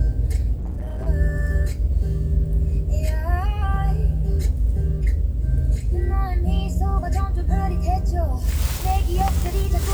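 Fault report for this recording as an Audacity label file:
0.570000	1.080000	clipped -24 dBFS

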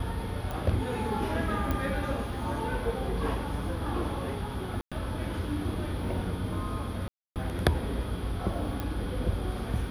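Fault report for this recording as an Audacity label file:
0.510000	0.510000	pop
1.710000	1.710000	pop -17 dBFS
4.810000	4.920000	gap 0.106 s
7.080000	7.360000	gap 0.278 s
8.800000	8.800000	pop -20 dBFS

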